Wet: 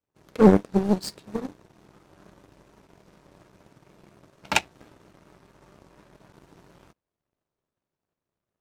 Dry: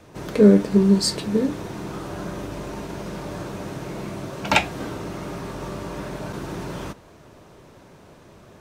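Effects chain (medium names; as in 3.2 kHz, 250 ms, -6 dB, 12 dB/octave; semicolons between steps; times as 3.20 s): power-law waveshaper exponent 2; vibrato with a chosen wave saw up 4.3 Hz, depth 100 cents; trim +1.5 dB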